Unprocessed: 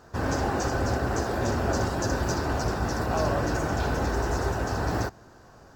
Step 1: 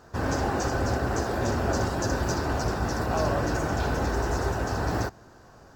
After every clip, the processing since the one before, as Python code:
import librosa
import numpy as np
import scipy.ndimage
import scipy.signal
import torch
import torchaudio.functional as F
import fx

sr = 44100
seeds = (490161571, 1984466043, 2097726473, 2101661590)

y = x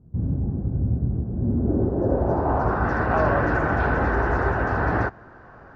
y = fx.filter_sweep_lowpass(x, sr, from_hz=170.0, to_hz=1700.0, start_s=1.31, end_s=2.95, q=1.8)
y = y * librosa.db_to_amplitude(4.0)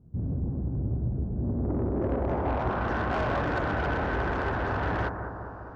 y = 10.0 ** (-21.0 / 20.0) * np.tanh(x / 10.0 ** (-21.0 / 20.0))
y = fx.echo_bbd(y, sr, ms=201, stages=2048, feedback_pct=68, wet_db=-8.0)
y = y * librosa.db_to_amplitude(-3.5)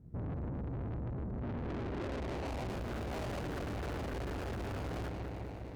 y = scipy.signal.medfilt(x, 41)
y = fx.tube_stage(y, sr, drive_db=39.0, bias=0.5)
y = y * librosa.db_to_amplitude(2.0)